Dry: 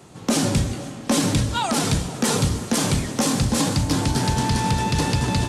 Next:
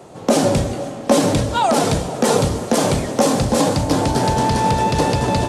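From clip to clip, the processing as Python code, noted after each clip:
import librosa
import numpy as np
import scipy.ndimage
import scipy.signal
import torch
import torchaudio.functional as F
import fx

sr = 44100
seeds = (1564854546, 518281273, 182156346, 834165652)

y = fx.peak_eq(x, sr, hz=590.0, db=12.5, octaves=1.5)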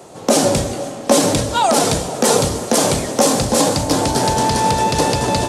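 y = fx.bass_treble(x, sr, bass_db=-4, treble_db=6)
y = y * 10.0 ** (1.5 / 20.0)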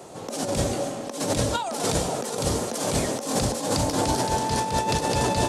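y = fx.over_compress(x, sr, threshold_db=-18.0, ratio=-0.5)
y = y * 10.0 ** (-6.0 / 20.0)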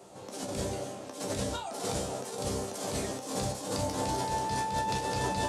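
y = fx.resonator_bank(x, sr, root=36, chord='fifth', decay_s=0.25)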